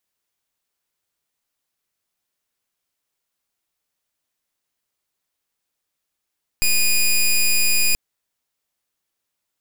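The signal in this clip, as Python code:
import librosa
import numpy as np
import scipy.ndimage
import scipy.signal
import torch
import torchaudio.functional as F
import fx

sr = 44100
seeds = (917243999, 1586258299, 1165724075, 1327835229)

y = fx.pulse(sr, length_s=1.33, hz=2460.0, level_db=-16.0, duty_pct=12)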